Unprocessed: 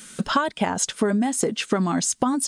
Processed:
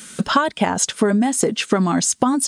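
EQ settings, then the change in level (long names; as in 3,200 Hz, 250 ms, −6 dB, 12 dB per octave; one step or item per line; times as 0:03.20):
high-pass filter 44 Hz
+4.5 dB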